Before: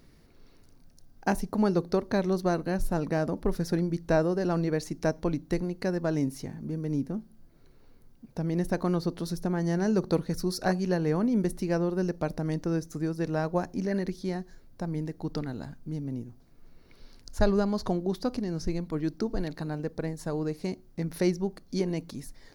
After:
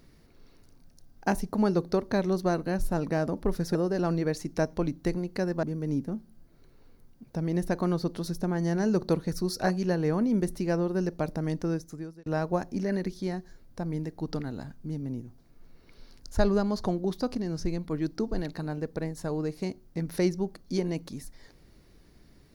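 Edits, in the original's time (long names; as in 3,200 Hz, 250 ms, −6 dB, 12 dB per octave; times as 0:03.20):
0:03.75–0:04.21: remove
0:06.09–0:06.65: remove
0:12.68–0:13.28: fade out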